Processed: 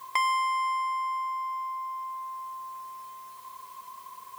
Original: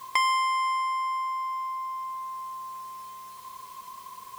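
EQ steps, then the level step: bell 740 Hz +5.5 dB 2.8 oct; bell 1900 Hz +2.5 dB 1.8 oct; high shelf 7500 Hz +7.5 dB; -8.0 dB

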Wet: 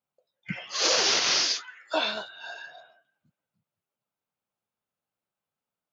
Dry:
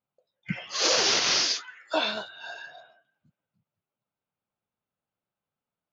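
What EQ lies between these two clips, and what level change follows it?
low shelf 230 Hz -5.5 dB; 0.0 dB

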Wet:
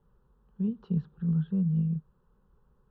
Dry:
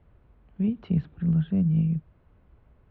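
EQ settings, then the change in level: fixed phaser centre 440 Hz, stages 8; -3.5 dB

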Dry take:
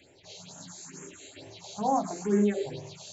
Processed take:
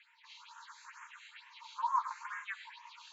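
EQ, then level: brick-wall FIR high-pass 880 Hz; LPF 1800 Hz 12 dB/oct; +6.5 dB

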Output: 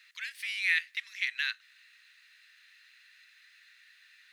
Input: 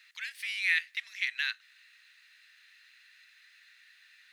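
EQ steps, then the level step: brick-wall FIR high-pass 930 Hz; 0.0 dB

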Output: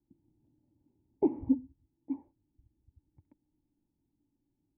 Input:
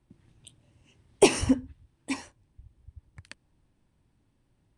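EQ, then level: vocal tract filter u; 0.0 dB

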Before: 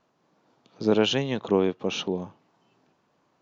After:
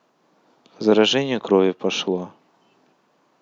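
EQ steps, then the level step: HPF 190 Hz 12 dB/oct; +6.5 dB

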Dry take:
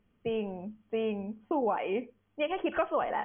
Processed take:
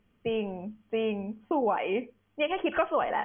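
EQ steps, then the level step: bell 3000 Hz +3 dB 2.1 oct; +2.0 dB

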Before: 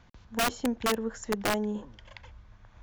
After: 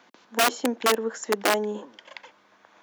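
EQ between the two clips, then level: HPF 270 Hz 24 dB/oct; +6.5 dB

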